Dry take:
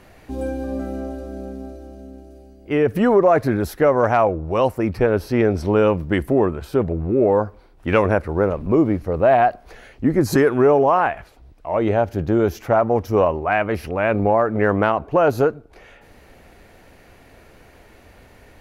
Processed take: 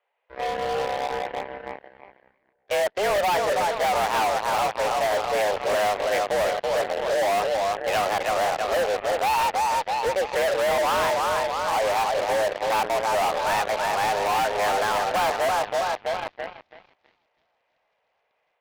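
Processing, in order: on a send: tape echo 0.327 s, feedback 60%, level -5 dB, low-pass 2600 Hz; on the sum: AGC gain up to 5 dB; mistuned SSB +200 Hz 260–3300 Hz; high shelf 2500 Hz +3 dB; added harmonics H 3 -9 dB, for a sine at -20 dBFS; gain -3 dB

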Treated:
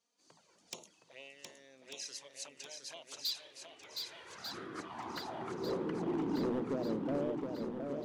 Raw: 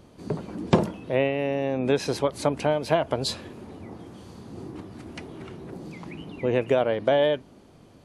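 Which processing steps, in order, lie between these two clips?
recorder AGC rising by 12 dB/s; low shelf 110 Hz -3 dB; notches 50/100/150/200/250/300 Hz; envelope flanger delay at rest 4.5 ms, full sweep at -18 dBFS; band-pass sweep 6400 Hz -> 220 Hz, 2.89–6.71; hard clip -30 dBFS, distortion -11 dB; swung echo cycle 1.194 s, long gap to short 1.5:1, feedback 49%, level -5 dB; mismatched tape noise reduction decoder only; gain -1 dB

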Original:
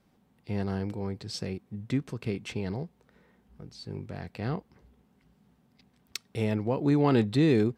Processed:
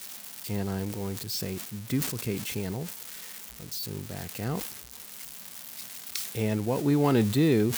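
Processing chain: switching spikes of -28 dBFS; sustainer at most 68 dB/s

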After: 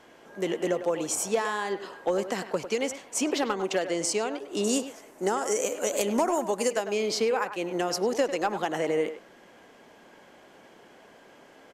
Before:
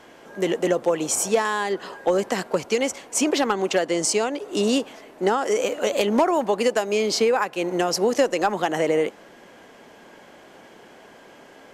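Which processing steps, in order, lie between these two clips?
4.64–6.76 resonant high shelf 5200 Hz +9 dB, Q 1.5; speakerphone echo 0.1 s, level -10 dB; gain -6 dB

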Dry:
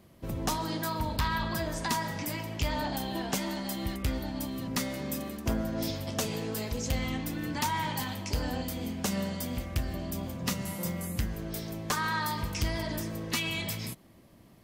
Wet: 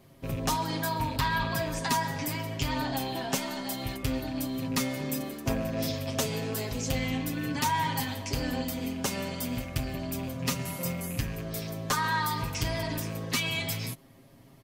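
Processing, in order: rattling part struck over -33 dBFS, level -35 dBFS; comb 7.4 ms, depth 77%

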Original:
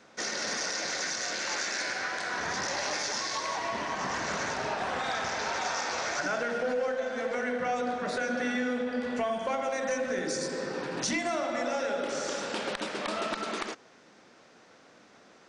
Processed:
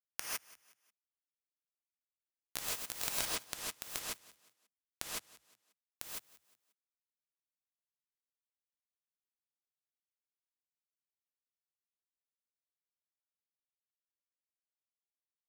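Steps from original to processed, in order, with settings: Doppler pass-by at 3.49, 14 m/s, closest 13 m; notches 60/120/180/240/300/360/420/480 Hz; comb 1.3 ms, depth 55%; compressor 5:1, threshold -46 dBFS, peak gain reduction 16 dB; bit-crush 6-bit; on a send: frequency-shifting echo 0.179 s, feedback 39%, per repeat +56 Hz, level -20 dB; on the sum: non-linear reverb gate 0.18 s rising, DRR -5.5 dB; gain +18 dB

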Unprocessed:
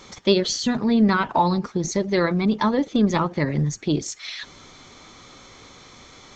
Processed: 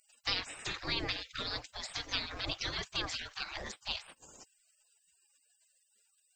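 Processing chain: spectral gate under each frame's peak -30 dB weak; dynamic EQ 790 Hz, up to -4 dB, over -55 dBFS, Q 0.82; gain +6.5 dB

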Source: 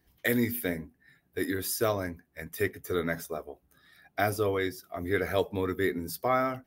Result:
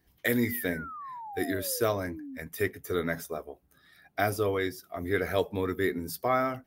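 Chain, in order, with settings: painted sound fall, 0.43–2.38, 250–2200 Hz -41 dBFS

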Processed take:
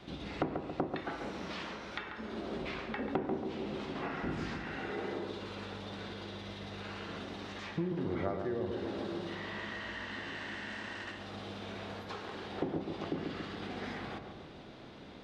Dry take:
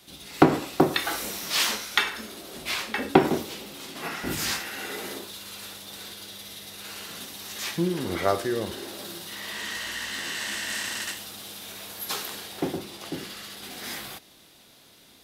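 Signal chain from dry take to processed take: compressor 5:1, threshold -42 dBFS, peak gain reduction 27.5 dB; tape spacing loss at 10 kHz 37 dB; darkening echo 0.139 s, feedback 61%, low-pass 1100 Hz, level -4 dB; gain +9 dB

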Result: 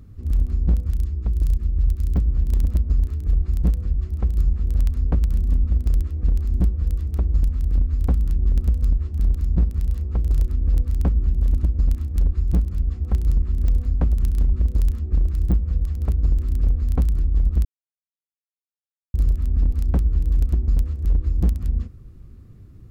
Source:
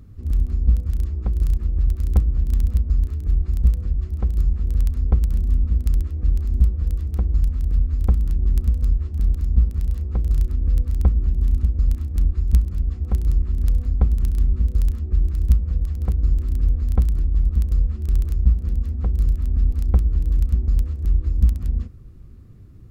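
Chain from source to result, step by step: wavefolder -11 dBFS; 0.94–2.25 bell 860 Hz -6 dB 2.7 oct; 17.65–19.14 mute

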